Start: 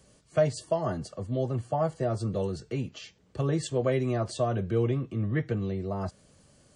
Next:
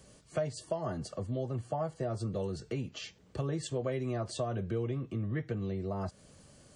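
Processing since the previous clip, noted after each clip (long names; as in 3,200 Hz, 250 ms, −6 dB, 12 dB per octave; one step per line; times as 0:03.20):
downward compressor 2.5 to 1, threshold −37 dBFS, peak gain reduction 12.5 dB
level +2 dB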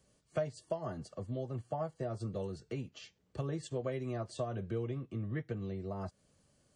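expander for the loud parts 1.5 to 1, over −52 dBFS
level −1 dB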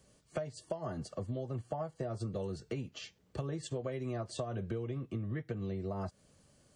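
downward compressor, threshold −39 dBFS, peak gain reduction 10 dB
level +5 dB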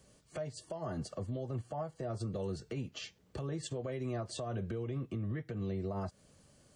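brickwall limiter −32 dBFS, peak gain reduction 10 dB
level +2 dB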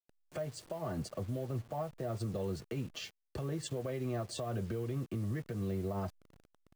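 hold until the input has moved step −53 dBFS
level +1 dB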